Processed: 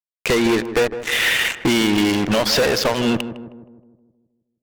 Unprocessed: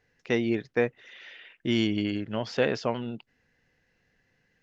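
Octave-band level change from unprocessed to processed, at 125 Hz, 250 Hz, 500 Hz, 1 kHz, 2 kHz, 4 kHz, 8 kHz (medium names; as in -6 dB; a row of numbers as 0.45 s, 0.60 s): +7.0 dB, +9.5 dB, +9.0 dB, +13.0 dB, +14.5 dB, +16.0 dB, no reading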